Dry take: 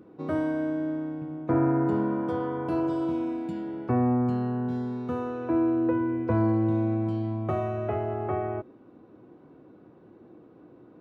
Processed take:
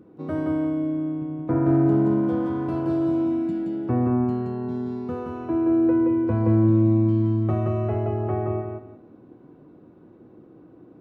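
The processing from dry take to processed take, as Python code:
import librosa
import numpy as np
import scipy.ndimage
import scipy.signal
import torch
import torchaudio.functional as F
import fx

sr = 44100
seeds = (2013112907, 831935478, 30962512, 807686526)

y = fx.low_shelf(x, sr, hz=380.0, db=6.5)
y = fx.echo_feedback(y, sr, ms=173, feedback_pct=24, wet_db=-3.0)
y = fx.running_max(y, sr, window=3, at=(1.66, 3.25))
y = y * librosa.db_to_amplitude(-3.0)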